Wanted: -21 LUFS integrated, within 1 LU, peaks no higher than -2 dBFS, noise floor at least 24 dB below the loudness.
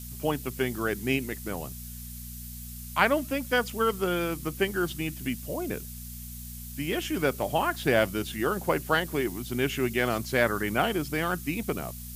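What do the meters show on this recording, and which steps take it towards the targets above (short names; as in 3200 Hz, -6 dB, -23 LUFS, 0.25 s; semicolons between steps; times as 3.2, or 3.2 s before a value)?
hum 60 Hz; harmonics up to 240 Hz; hum level -40 dBFS; noise floor -41 dBFS; noise floor target -53 dBFS; loudness -28.5 LUFS; peak -7.5 dBFS; loudness target -21.0 LUFS
-> de-hum 60 Hz, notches 4; noise print and reduce 12 dB; gain +7.5 dB; limiter -2 dBFS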